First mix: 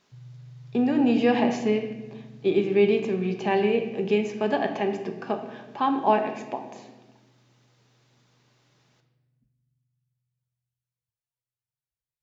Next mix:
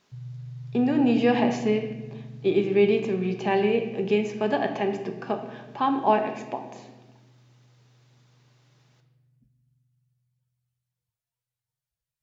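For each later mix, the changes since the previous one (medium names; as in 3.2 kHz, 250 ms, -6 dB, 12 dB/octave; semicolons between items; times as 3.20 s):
background +6.5 dB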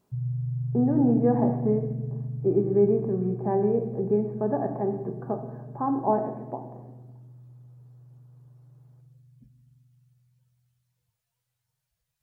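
speech: add Gaussian low-pass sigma 8.2 samples; background +9.0 dB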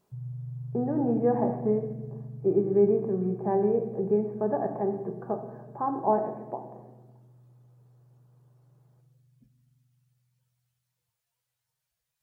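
speech: add peaking EQ 260 Hz -9.5 dB 0.31 oct; background: add bass shelf 200 Hz -11 dB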